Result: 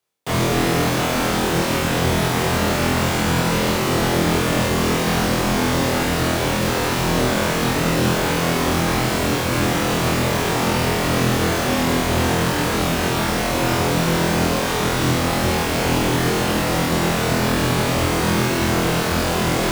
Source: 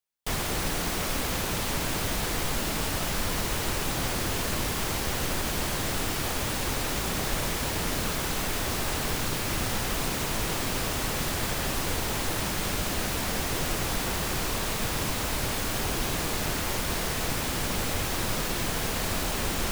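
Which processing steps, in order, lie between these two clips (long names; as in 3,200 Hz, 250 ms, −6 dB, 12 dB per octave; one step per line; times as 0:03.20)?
phase distortion by the signal itself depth 0.13 ms
high-pass filter 150 Hz 12 dB per octave
spectral tilt −2 dB per octave
reversed playback
upward compression, threshold −35 dBFS
reversed playback
frequency shifter −18 Hz
on a send: flutter between parallel walls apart 4.1 metres, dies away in 0.85 s
on the sum: level +7.5 dB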